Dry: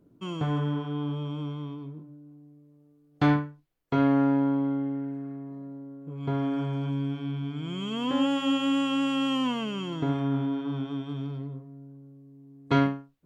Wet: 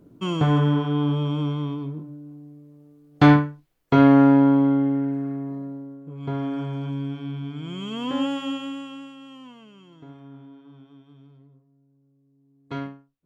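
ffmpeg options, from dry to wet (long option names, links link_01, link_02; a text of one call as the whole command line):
ffmpeg -i in.wav -af "volume=16dB,afade=type=out:start_time=5.5:duration=0.57:silence=0.398107,afade=type=out:start_time=8.21:duration=0.54:silence=0.354813,afade=type=out:start_time=8.75:duration=0.41:silence=0.375837,afade=type=in:start_time=11.87:duration=0.86:silence=0.421697" out.wav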